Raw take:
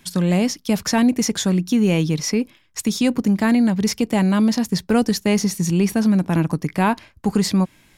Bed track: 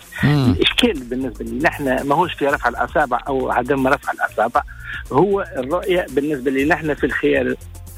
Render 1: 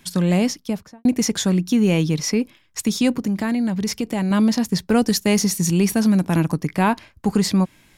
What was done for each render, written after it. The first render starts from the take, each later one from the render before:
0:00.45–0:01.05: fade out and dull
0:03.14–0:04.31: downward compressor 2.5 to 1, threshold −20 dBFS
0:05.07–0:06.52: high-shelf EQ 4,700 Hz +6.5 dB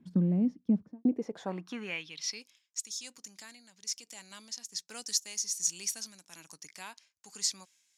band-pass filter sweep 230 Hz → 6,500 Hz, 0:00.87–0:02.51
amplitude tremolo 1.2 Hz, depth 54%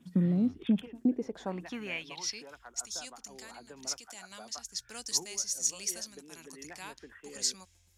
mix in bed track −33 dB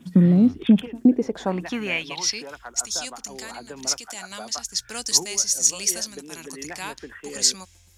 level +11.5 dB
brickwall limiter −3 dBFS, peak gain reduction 1 dB

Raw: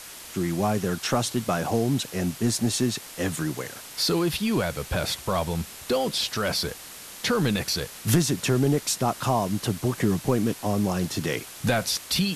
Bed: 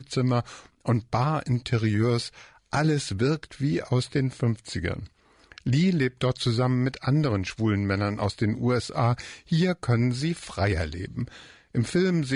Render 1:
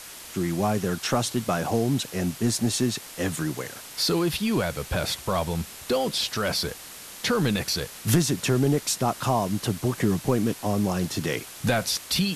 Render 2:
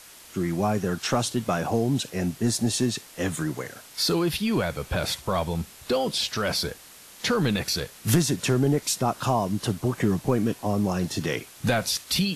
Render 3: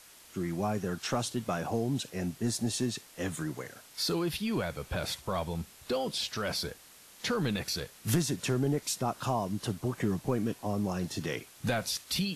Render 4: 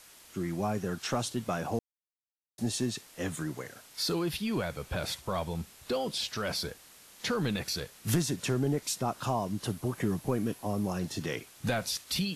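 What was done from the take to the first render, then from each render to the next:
no processing that can be heard
noise reduction from a noise print 6 dB
level −7 dB
0:01.79–0:02.58: silence; 0:09.65–0:10.99: parametric band 11,000 Hz +8 dB 0.21 octaves

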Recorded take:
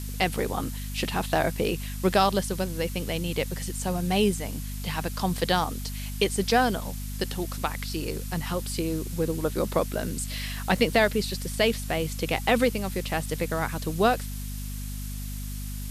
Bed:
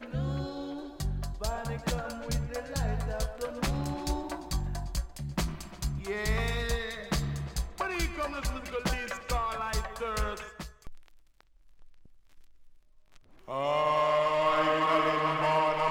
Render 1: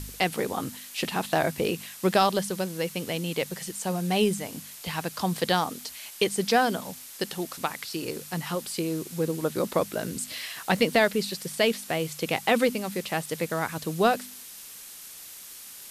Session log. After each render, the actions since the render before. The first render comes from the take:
hum removal 50 Hz, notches 5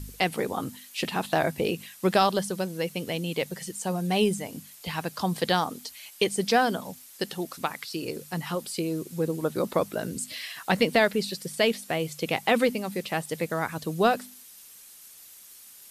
broadband denoise 8 dB, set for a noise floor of −44 dBFS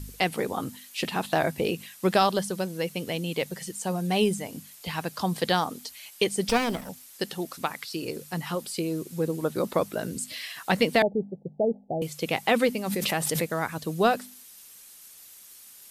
0:06.49–0:06.89: lower of the sound and its delayed copy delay 0.37 ms
0:11.02–0:12.02: Chebyshev low-pass filter 860 Hz, order 10
0:12.86–0:13.51: background raised ahead of every attack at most 20 dB per second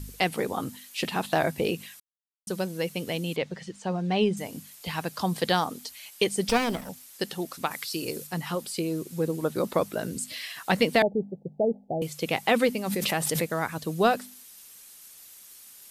0:02.00–0:02.47: silence
0:03.36–0:04.37: high-frequency loss of the air 140 metres
0:07.71–0:08.27: high-shelf EQ 5,000 Hz +8 dB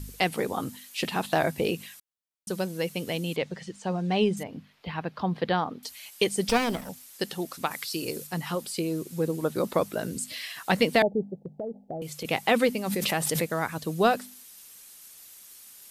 0:04.43–0:05.83: high-frequency loss of the air 330 metres
0:11.39–0:12.25: downward compressor, threshold −31 dBFS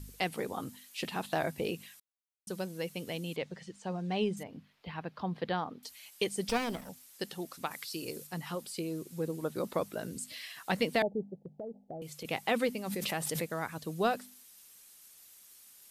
level −7.5 dB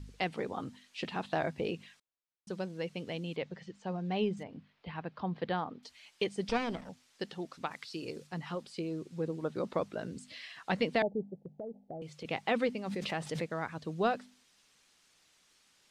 high-frequency loss of the air 120 metres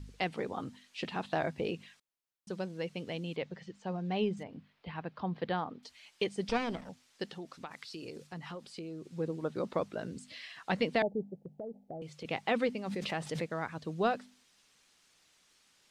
0:07.34–0:09.09: downward compressor 2.5 to 1, threshold −41 dBFS

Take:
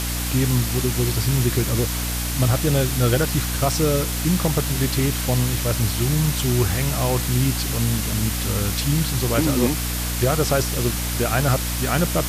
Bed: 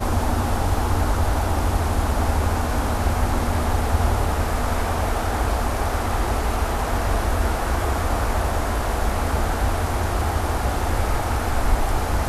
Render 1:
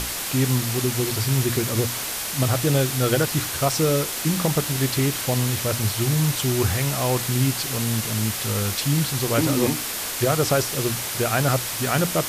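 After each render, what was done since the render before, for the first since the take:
mains-hum notches 60/120/180/240/300 Hz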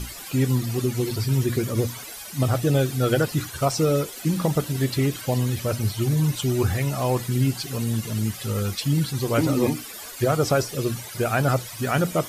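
broadband denoise 15 dB, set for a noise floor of −29 dBFS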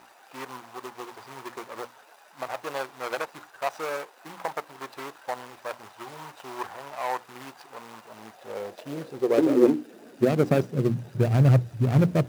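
running median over 41 samples
high-pass filter sweep 930 Hz → 110 Hz, 0:08.00–0:11.42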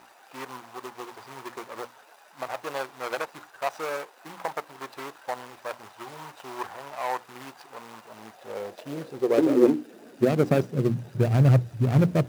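no processing that can be heard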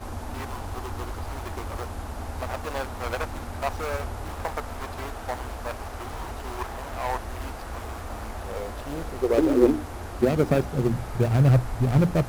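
mix in bed −13.5 dB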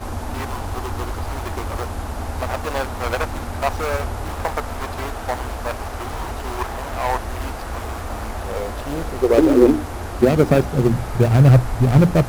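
level +7 dB
brickwall limiter −1 dBFS, peak gain reduction 2.5 dB

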